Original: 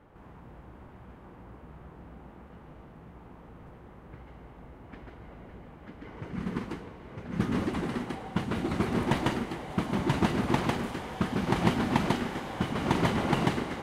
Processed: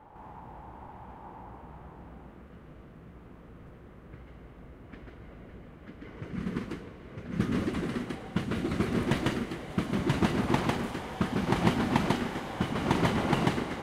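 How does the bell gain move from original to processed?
bell 860 Hz 0.52 oct
1.38 s +13 dB
2.18 s +1.5 dB
2.44 s -8 dB
9.94 s -8 dB
10.42 s -0.5 dB

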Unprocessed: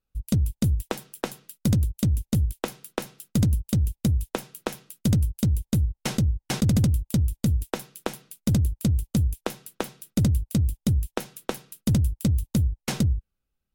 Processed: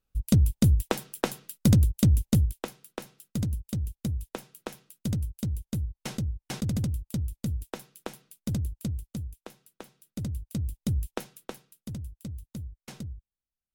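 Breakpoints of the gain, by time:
2.31 s +2 dB
2.74 s -8 dB
8.78 s -8 dB
9.39 s -15.5 dB
9.91 s -15.5 dB
11.09 s -3.5 dB
11.91 s -16 dB

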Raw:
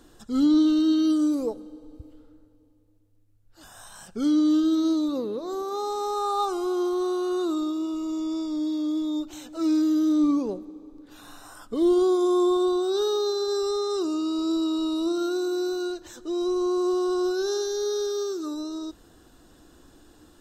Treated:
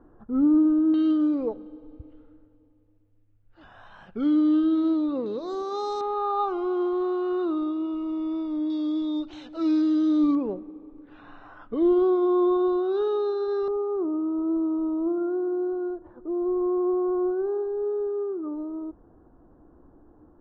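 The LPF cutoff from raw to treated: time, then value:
LPF 24 dB/oct
1300 Hz
from 0.94 s 2800 Hz
from 5.26 s 5400 Hz
from 6.01 s 2700 Hz
from 8.7 s 4100 Hz
from 10.35 s 2500 Hz
from 13.68 s 1100 Hz

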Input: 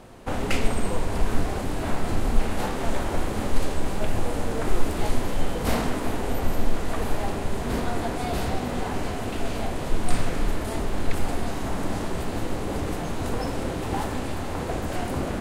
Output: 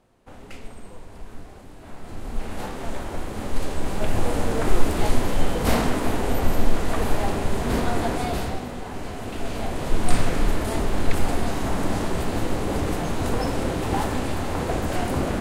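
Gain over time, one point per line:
1.8 s -16 dB
2.56 s -4.5 dB
3.25 s -4.5 dB
4.28 s +3.5 dB
8.16 s +3.5 dB
8.8 s -6 dB
10.08 s +3.5 dB

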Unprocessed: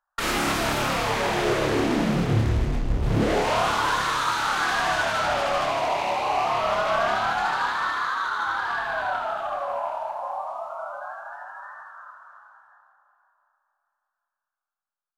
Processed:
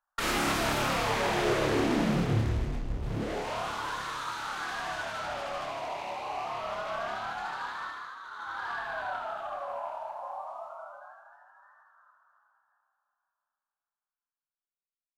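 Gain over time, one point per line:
2.15 s -4 dB
3.24 s -11.5 dB
7.82 s -11.5 dB
8.21 s -18.5 dB
8.66 s -8 dB
10.65 s -8 dB
11.43 s -18.5 dB

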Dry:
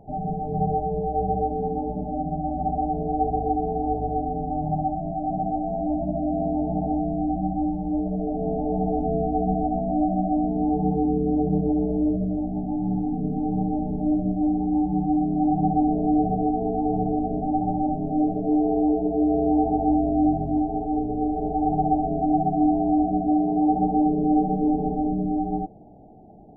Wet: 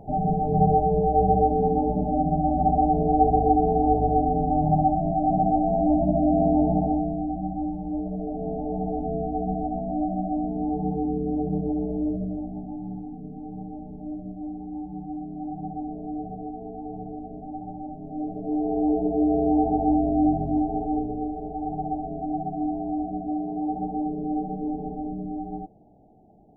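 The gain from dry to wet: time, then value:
6.66 s +4.5 dB
7.28 s -4 dB
12.25 s -4 dB
13.21 s -12 dB
17.95 s -12 dB
18.97 s -0.5 dB
20.91 s -0.5 dB
21.43 s -7.5 dB

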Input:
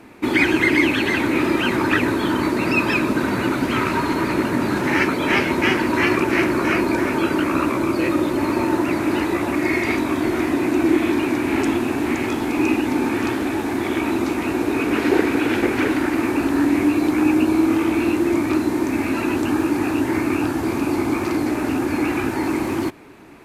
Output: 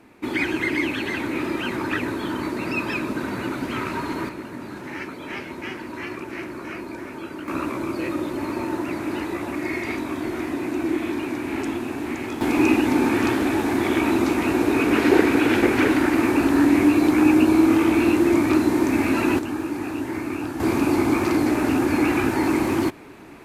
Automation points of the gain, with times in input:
-7 dB
from 4.29 s -14.5 dB
from 7.48 s -7 dB
from 12.41 s +1 dB
from 19.39 s -7.5 dB
from 20.6 s +1 dB

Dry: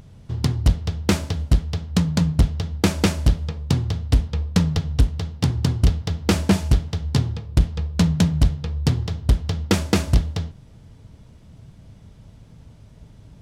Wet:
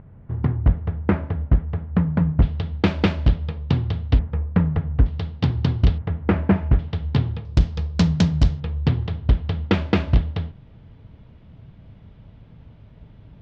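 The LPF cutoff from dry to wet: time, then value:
LPF 24 dB/oct
1900 Hz
from 2.42 s 3600 Hz
from 4.19 s 2000 Hz
from 5.06 s 3900 Hz
from 5.98 s 2100 Hz
from 6.79 s 3500 Hz
from 7.45 s 6000 Hz
from 8.6 s 3400 Hz

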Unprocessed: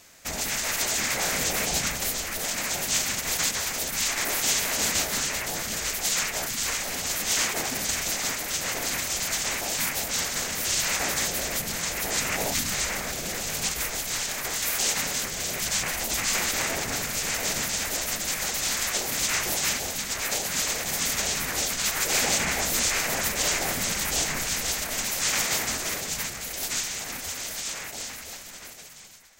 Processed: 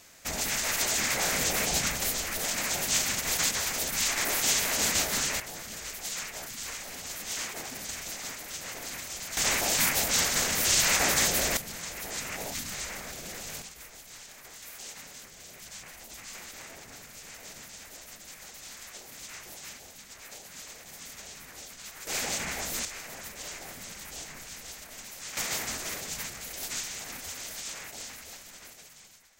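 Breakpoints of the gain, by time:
-1.5 dB
from 5.4 s -10 dB
from 9.37 s +2 dB
from 11.57 s -9 dB
from 13.62 s -18 dB
from 22.07 s -8 dB
from 22.85 s -15.5 dB
from 25.37 s -6 dB

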